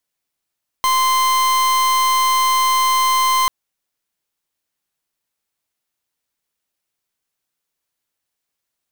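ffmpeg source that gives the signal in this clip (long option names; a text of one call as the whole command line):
ffmpeg -f lavfi -i "aevalsrc='0.168*(2*lt(mod(1040*t,1),0.42)-1)':duration=2.64:sample_rate=44100" out.wav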